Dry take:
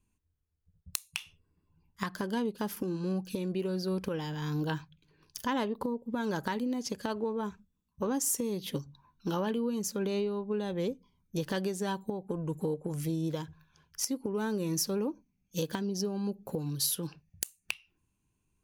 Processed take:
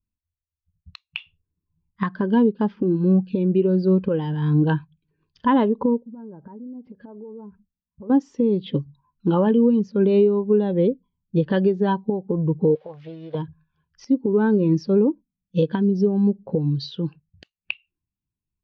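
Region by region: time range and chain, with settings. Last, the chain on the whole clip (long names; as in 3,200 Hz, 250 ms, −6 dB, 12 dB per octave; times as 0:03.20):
0:06.00–0:08.10: treble cut that deepens with the level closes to 890 Hz, closed at −30 dBFS + downward compressor 5 to 1, threshold −44 dBFS
0:12.75–0:13.35: spike at every zero crossing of −36 dBFS + low shelf with overshoot 420 Hz −13.5 dB, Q 1.5 + highs frequency-modulated by the lows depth 0.27 ms
whole clip: inverse Chebyshev low-pass filter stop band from 11,000 Hz, stop band 60 dB; every bin expanded away from the loudest bin 1.5 to 1; level +6.5 dB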